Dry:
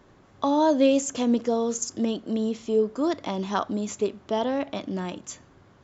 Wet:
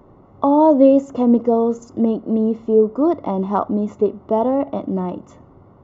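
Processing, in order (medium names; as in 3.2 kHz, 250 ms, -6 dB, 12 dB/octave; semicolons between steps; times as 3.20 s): Savitzky-Golay filter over 65 samples; trim +8.5 dB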